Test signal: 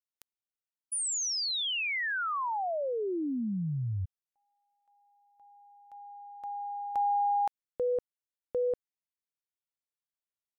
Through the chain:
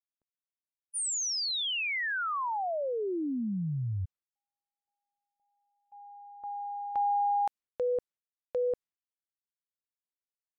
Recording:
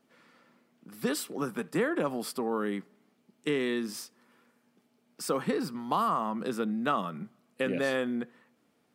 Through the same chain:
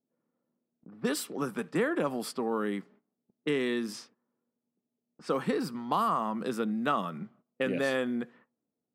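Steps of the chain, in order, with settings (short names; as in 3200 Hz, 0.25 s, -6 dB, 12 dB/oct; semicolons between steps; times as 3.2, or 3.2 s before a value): low-pass opened by the level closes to 530 Hz, open at -30 dBFS; gate -57 dBFS, range -15 dB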